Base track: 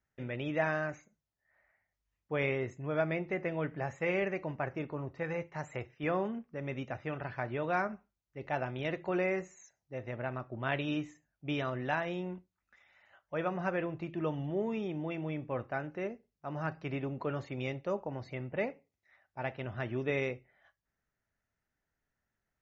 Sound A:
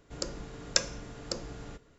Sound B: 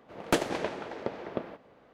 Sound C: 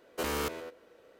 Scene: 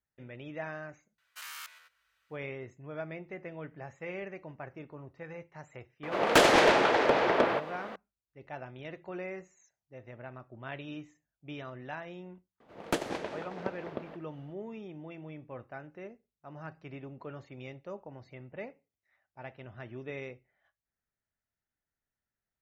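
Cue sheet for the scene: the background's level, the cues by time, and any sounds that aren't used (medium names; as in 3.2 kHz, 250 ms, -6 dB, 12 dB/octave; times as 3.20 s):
base track -8 dB
1.18 s: add C -6 dB + high-pass 1.3 kHz 24 dB/octave
6.03 s: add B -1 dB + overdrive pedal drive 27 dB, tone 4.6 kHz, clips at -10 dBFS
12.60 s: add B -2.5 dB + tremolo 3.9 Hz, depth 34%
not used: A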